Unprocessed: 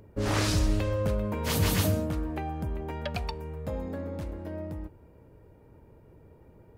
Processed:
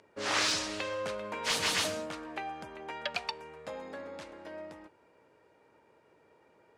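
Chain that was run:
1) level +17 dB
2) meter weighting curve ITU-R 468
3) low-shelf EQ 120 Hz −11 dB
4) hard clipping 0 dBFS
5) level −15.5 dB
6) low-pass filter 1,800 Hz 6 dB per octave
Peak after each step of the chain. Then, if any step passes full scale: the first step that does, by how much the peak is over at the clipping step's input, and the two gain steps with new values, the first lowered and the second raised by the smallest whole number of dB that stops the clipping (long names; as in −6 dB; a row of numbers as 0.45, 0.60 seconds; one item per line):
+3.5, +7.5, +7.5, 0.0, −15.5, −18.0 dBFS
step 1, 7.5 dB
step 1 +9 dB, step 5 −7.5 dB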